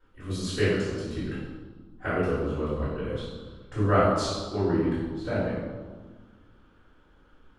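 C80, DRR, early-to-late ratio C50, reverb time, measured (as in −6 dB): 2.0 dB, −12.0 dB, −1.0 dB, 1.5 s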